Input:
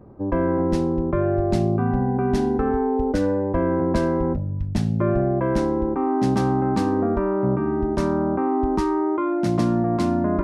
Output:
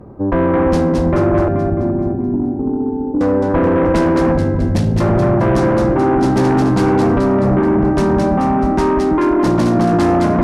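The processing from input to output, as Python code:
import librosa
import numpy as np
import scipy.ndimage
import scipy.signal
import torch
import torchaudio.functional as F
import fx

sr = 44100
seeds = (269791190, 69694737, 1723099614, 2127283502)

y = fx.formant_cascade(x, sr, vowel='u', at=(1.48, 3.21))
y = fx.echo_split(y, sr, split_hz=450.0, low_ms=337, high_ms=215, feedback_pct=52, wet_db=-3.5)
y = fx.cheby_harmonics(y, sr, harmonics=(5,), levels_db=(-9,), full_scale_db=-6.5)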